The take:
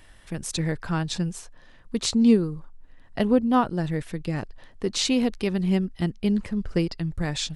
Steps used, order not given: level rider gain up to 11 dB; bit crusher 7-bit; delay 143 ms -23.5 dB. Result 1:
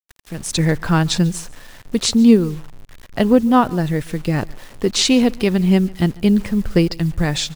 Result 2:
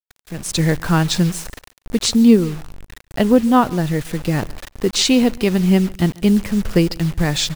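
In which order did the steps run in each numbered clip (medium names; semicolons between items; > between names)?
level rider > bit crusher > delay; bit crusher > delay > level rider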